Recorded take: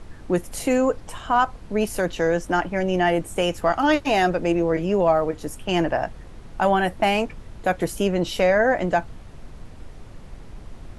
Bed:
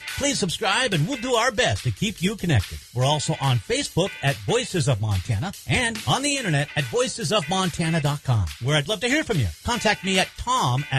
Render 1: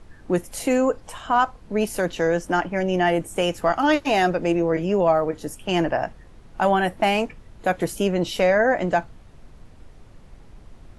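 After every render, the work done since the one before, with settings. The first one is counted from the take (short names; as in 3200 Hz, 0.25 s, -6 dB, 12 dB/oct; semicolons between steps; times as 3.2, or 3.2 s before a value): noise print and reduce 6 dB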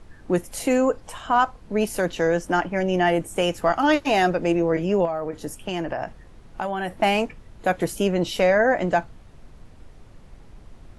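5.05–6.98 compressor, threshold -23 dBFS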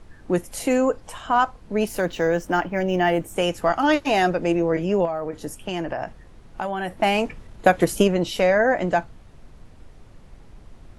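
1.87–3.34 decimation joined by straight lines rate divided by 2×; 7.14–8.17 transient shaper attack +8 dB, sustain +4 dB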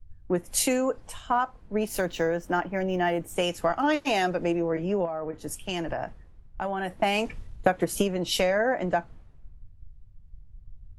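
compressor 6:1, threshold -22 dBFS, peak gain reduction 11.5 dB; three-band expander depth 100%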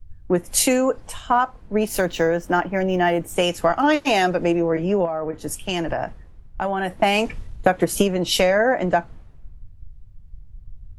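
gain +6.5 dB; limiter -1 dBFS, peak gain reduction 2 dB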